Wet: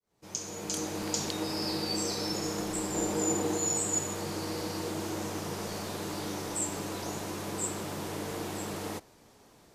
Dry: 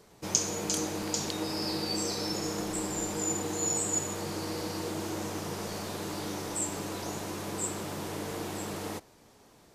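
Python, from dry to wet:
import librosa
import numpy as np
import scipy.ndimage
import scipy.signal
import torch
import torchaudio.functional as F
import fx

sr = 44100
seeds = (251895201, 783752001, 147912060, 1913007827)

y = fx.fade_in_head(x, sr, length_s=1.07)
y = fx.peak_eq(y, sr, hz=420.0, db=5.0, octaves=2.3, at=(2.94, 3.58))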